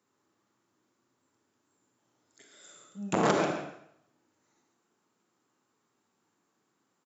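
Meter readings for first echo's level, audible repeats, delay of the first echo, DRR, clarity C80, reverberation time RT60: -8.5 dB, 1, 0.138 s, 2.0 dB, 5.0 dB, 0.70 s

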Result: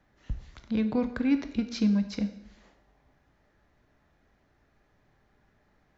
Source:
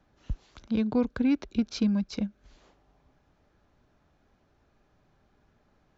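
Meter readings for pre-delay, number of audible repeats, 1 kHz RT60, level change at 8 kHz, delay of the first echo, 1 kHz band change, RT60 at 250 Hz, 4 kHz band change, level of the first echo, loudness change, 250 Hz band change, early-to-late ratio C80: 6 ms, none, 0.75 s, n/a, none, 0.0 dB, 0.80 s, -0.5 dB, none, 0.0 dB, 0.0 dB, 13.5 dB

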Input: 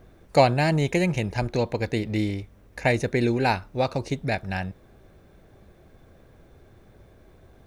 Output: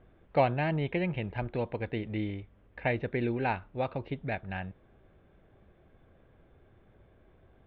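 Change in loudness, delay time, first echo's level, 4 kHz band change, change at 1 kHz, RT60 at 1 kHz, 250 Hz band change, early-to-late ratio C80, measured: -8.0 dB, none, none, -13.0 dB, -7.5 dB, none, -8.0 dB, none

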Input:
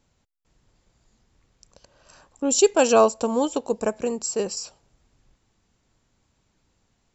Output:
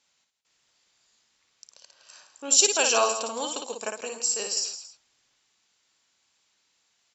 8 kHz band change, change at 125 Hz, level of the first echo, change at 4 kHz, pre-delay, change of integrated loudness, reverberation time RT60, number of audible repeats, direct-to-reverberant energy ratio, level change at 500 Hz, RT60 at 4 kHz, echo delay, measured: n/a, n/a, -5.0 dB, +6.0 dB, none, -2.0 dB, none, 3, none, -9.5 dB, none, 57 ms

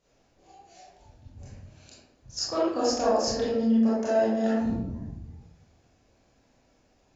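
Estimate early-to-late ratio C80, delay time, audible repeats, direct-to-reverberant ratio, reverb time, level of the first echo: 3.0 dB, none, none, -9.5 dB, 0.85 s, none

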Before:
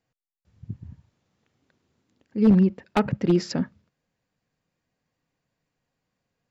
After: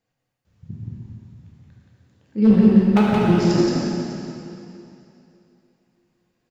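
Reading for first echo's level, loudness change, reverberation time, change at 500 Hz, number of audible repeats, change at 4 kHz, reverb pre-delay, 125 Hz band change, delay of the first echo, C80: -3.5 dB, +5.0 dB, 2.8 s, +5.5 dB, 1, +6.5 dB, 6 ms, +5.0 dB, 0.174 s, -3.0 dB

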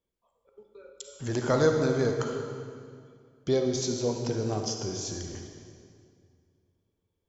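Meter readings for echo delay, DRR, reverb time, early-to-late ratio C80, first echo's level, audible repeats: none, 3.5 dB, 2.2 s, 5.0 dB, none, none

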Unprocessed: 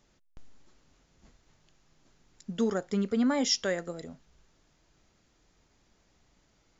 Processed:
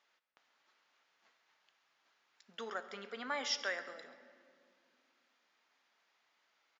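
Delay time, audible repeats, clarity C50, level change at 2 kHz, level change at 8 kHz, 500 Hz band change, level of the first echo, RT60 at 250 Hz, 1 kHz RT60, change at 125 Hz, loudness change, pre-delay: 0.134 s, 1, 12.0 dB, -1.0 dB, n/a, -13.0 dB, -17.5 dB, 3.4 s, 2.1 s, under -25 dB, -10.0 dB, 4 ms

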